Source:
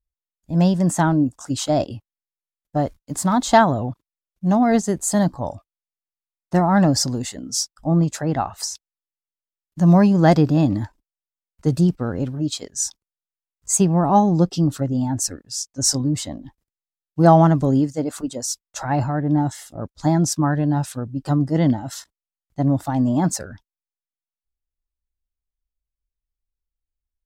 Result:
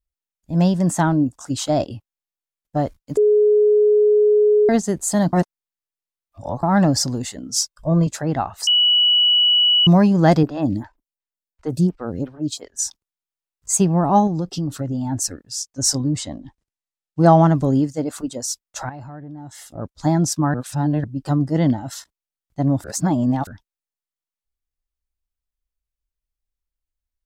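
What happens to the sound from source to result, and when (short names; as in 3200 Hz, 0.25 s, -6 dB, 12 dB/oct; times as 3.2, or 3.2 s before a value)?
3.17–4.69 bleep 420 Hz -11 dBFS
5.33–6.63 reverse
7.56–8.07 comb 1.9 ms, depth 96%
8.67–9.87 bleep 2940 Hz -12 dBFS
10.43–12.79 photocell phaser 2.8 Hz
14.27–15.12 compressor 5:1, threshold -20 dBFS
16.16–17.49 LPF 9600 Hz 24 dB/oct
18.89–19.7 compressor 5:1, threshold -35 dBFS
20.54–21.04 reverse
22.84–23.47 reverse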